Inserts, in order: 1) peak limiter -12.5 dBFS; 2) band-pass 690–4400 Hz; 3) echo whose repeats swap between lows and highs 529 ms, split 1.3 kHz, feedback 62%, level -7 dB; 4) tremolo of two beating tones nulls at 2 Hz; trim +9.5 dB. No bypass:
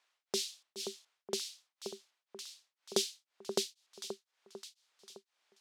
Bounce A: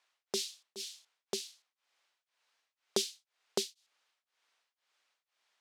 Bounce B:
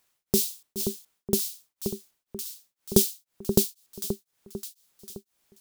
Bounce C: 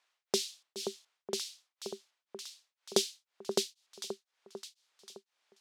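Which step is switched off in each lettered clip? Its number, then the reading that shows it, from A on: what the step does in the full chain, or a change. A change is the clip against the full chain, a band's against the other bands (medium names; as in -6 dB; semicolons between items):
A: 3, momentary loudness spread change -10 LU; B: 2, 125 Hz band +17.5 dB; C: 1, crest factor change +1.5 dB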